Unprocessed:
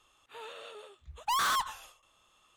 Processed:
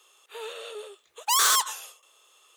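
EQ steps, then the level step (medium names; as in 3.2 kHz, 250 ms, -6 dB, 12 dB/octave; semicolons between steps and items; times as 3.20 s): tilt EQ +3.5 dB/octave; dynamic bell 7.1 kHz, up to +6 dB, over -42 dBFS, Q 1.3; resonant high-pass 420 Hz, resonance Q 4.9; +1.5 dB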